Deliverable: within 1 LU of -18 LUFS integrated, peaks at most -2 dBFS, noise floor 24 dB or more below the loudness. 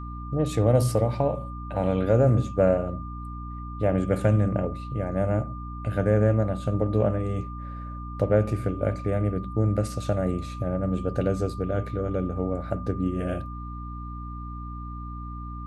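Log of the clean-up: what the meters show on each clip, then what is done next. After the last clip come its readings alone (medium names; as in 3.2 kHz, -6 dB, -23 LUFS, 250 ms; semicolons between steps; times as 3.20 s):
hum 60 Hz; highest harmonic 300 Hz; hum level -34 dBFS; steady tone 1.2 kHz; tone level -40 dBFS; loudness -26.0 LUFS; peak level -8.0 dBFS; loudness target -18.0 LUFS
-> hum notches 60/120/180/240/300 Hz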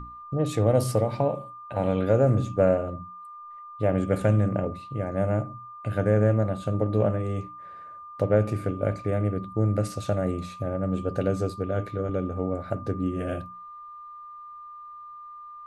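hum not found; steady tone 1.2 kHz; tone level -40 dBFS
-> band-stop 1.2 kHz, Q 30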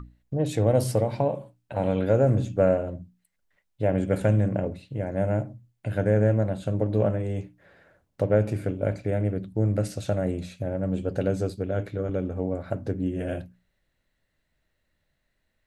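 steady tone not found; loudness -26.5 LUFS; peak level -9.0 dBFS; loudness target -18.0 LUFS
-> trim +8.5 dB; peak limiter -2 dBFS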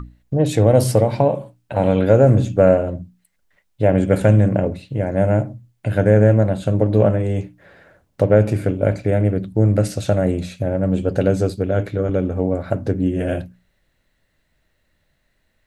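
loudness -18.0 LUFS; peak level -2.0 dBFS; noise floor -67 dBFS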